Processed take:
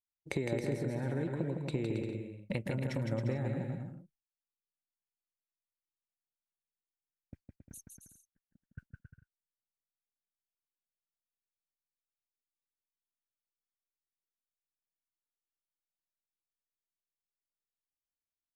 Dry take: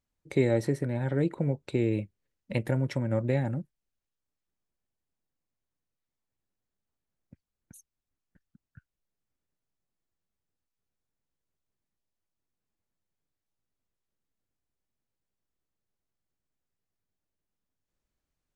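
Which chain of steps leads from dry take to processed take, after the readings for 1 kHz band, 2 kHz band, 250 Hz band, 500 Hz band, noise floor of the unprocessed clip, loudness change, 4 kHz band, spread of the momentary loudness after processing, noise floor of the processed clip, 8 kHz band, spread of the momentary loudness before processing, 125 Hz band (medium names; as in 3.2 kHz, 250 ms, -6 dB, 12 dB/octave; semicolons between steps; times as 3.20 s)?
-5.0 dB, -4.5 dB, -6.0 dB, -7.5 dB, under -85 dBFS, -7.0 dB, -3.0 dB, 20 LU, under -85 dBFS, -1.0 dB, 8 LU, -6.0 dB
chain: expander -47 dBFS; compression 5:1, threshold -42 dBFS, peak gain reduction 20 dB; on a send: bouncing-ball echo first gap 160 ms, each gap 0.7×, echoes 5; on the sum: trim +7.5 dB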